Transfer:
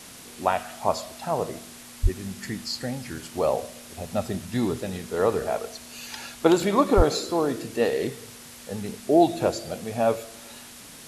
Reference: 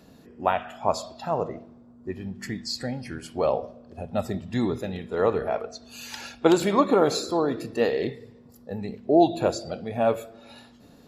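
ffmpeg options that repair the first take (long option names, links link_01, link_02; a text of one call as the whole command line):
ffmpeg -i in.wav -filter_complex "[0:a]asplit=3[link_01][link_02][link_03];[link_01]afade=type=out:start_time=2.02:duration=0.02[link_04];[link_02]highpass=frequency=140:width=0.5412,highpass=frequency=140:width=1.3066,afade=type=in:start_time=2.02:duration=0.02,afade=type=out:start_time=2.14:duration=0.02[link_05];[link_03]afade=type=in:start_time=2.14:duration=0.02[link_06];[link_04][link_05][link_06]amix=inputs=3:normalize=0,asplit=3[link_07][link_08][link_09];[link_07]afade=type=out:start_time=6.96:duration=0.02[link_10];[link_08]highpass=frequency=140:width=0.5412,highpass=frequency=140:width=1.3066,afade=type=in:start_time=6.96:duration=0.02,afade=type=out:start_time=7.08:duration=0.02[link_11];[link_09]afade=type=in:start_time=7.08:duration=0.02[link_12];[link_10][link_11][link_12]amix=inputs=3:normalize=0,afwtdn=0.0071" out.wav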